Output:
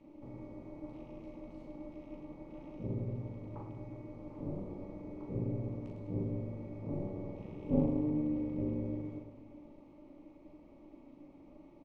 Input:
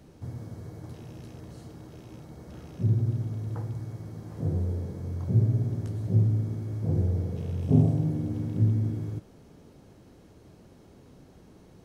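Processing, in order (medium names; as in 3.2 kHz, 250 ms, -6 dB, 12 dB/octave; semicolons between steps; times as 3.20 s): dynamic bell 330 Hz, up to -6 dB, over -46 dBFS, Q 2.1; vowel filter u; AM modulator 290 Hz, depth 70%; reverse bouncing-ball echo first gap 40 ms, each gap 1.6×, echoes 5; loudspeaker Doppler distortion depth 0.15 ms; trim +9.5 dB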